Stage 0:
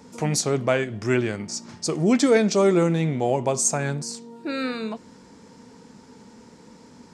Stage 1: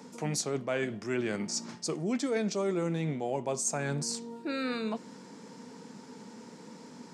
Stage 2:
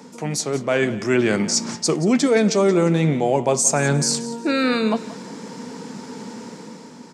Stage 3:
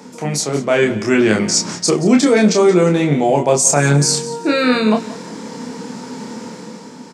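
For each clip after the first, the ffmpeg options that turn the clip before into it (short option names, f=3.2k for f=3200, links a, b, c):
-af "highpass=f=140:w=0.5412,highpass=f=140:w=1.3066,areverse,acompressor=threshold=-30dB:ratio=4,areverse"
-af "dynaudnorm=f=120:g=11:m=7dB,aecho=1:1:177|354|531:0.15|0.0434|0.0126,volume=6.5dB"
-filter_complex "[0:a]asplit=2[a][b];[b]adelay=28,volume=-3.5dB[c];[a][c]amix=inputs=2:normalize=0,volume=3.5dB"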